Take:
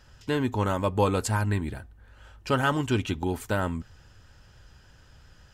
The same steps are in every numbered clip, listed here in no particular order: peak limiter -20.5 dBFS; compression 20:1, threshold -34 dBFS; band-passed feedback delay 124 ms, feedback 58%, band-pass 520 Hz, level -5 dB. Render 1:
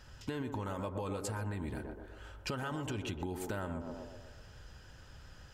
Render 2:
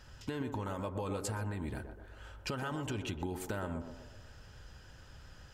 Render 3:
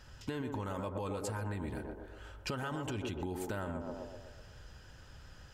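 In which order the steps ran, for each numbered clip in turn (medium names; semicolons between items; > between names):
peak limiter > band-passed feedback delay > compression; peak limiter > compression > band-passed feedback delay; band-passed feedback delay > peak limiter > compression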